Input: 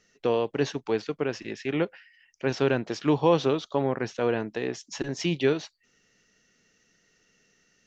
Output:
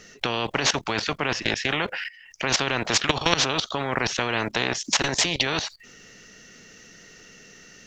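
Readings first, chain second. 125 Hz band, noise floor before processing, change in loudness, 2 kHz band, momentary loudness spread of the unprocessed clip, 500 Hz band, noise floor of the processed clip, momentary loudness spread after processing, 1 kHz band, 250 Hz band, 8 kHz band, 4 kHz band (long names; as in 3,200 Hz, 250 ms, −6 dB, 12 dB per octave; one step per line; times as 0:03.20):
−0.5 dB, −68 dBFS, +3.5 dB, +10.5 dB, 9 LU, −4.0 dB, −50 dBFS, 7 LU, +5.5 dB, −3.0 dB, can't be measured, +14.5 dB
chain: output level in coarse steps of 19 dB
every bin compressed towards the loudest bin 4 to 1
level +8 dB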